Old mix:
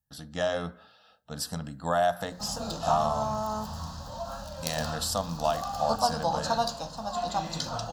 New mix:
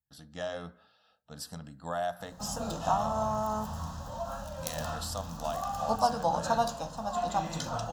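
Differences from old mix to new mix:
speech −8.0 dB
background: add parametric band 4,500 Hz −10.5 dB 0.51 octaves

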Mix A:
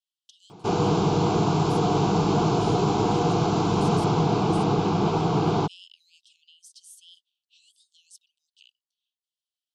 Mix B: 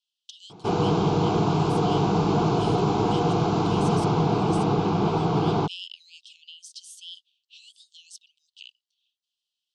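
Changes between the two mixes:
speech +12.0 dB
master: add high-frequency loss of the air 74 metres

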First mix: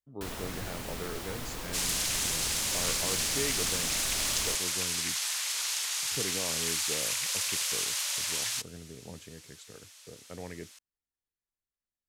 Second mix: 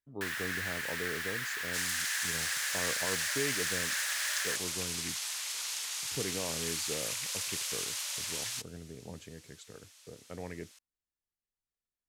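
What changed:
first sound: add high-pass with resonance 1,700 Hz, resonance Q 6.1
second sound −5.0 dB

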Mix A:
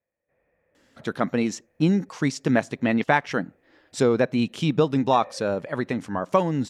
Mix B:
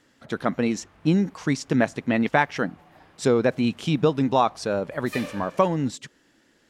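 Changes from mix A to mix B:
speech: entry −0.75 s
background: remove formant resonators in series e

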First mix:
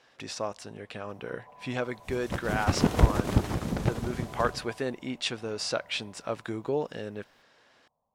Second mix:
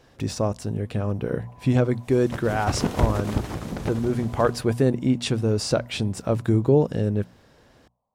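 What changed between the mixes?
speech: remove resonant band-pass 2,400 Hz, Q 0.55
master: add mains-hum notches 60/120/180/240 Hz

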